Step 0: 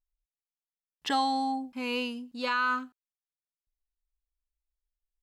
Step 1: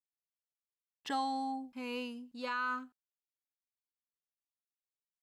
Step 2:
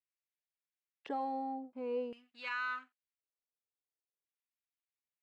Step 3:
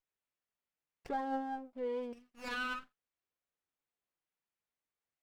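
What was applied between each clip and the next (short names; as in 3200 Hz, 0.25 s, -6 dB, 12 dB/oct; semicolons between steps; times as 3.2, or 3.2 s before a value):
dynamic EQ 3500 Hz, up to -4 dB, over -46 dBFS, Q 0.92; expander -52 dBFS; gain -7 dB
sample leveller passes 1; LFO band-pass square 0.47 Hz 470–2200 Hz; gain +4 dB
flange 0.58 Hz, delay 1.3 ms, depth 5.5 ms, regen +48%; running maximum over 9 samples; gain +4.5 dB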